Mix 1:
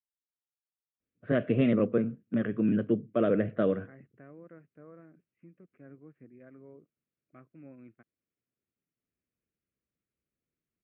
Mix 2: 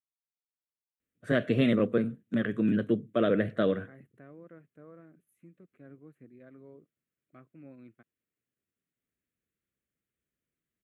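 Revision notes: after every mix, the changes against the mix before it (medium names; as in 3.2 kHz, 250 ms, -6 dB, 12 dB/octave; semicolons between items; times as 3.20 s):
first voice: add peaking EQ 1.8 kHz +6 dB 0.75 oct; master: remove steep low-pass 2.8 kHz 36 dB/octave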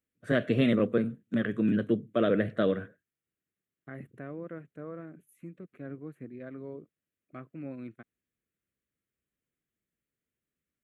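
first voice: entry -1.00 s; second voice +10.0 dB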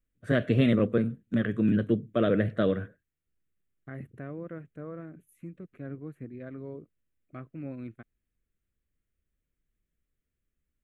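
master: remove Bessel high-pass 170 Hz, order 2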